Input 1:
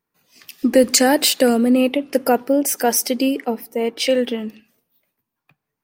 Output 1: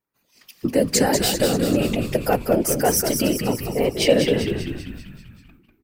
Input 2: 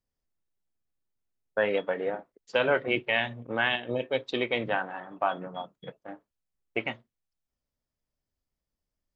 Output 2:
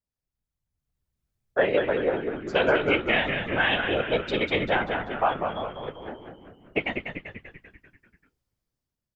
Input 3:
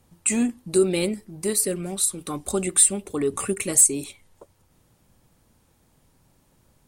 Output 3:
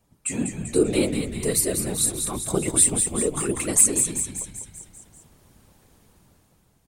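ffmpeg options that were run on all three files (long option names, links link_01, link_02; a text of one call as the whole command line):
ffmpeg -i in.wav -filter_complex "[0:a]dynaudnorm=framelen=230:gausssize=7:maxgain=11dB,afftfilt=real='hypot(re,im)*cos(2*PI*random(0))':imag='hypot(re,im)*sin(2*PI*random(1))':win_size=512:overlap=0.75,asplit=8[link_01][link_02][link_03][link_04][link_05][link_06][link_07][link_08];[link_02]adelay=195,afreqshift=-72,volume=-6dB[link_09];[link_03]adelay=390,afreqshift=-144,volume=-11dB[link_10];[link_04]adelay=585,afreqshift=-216,volume=-16.1dB[link_11];[link_05]adelay=780,afreqshift=-288,volume=-21.1dB[link_12];[link_06]adelay=975,afreqshift=-360,volume=-26.1dB[link_13];[link_07]adelay=1170,afreqshift=-432,volume=-31.2dB[link_14];[link_08]adelay=1365,afreqshift=-504,volume=-36.2dB[link_15];[link_01][link_09][link_10][link_11][link_12][link_13][link_14][link_15]amix=inputs=8:normalize=0" out.wav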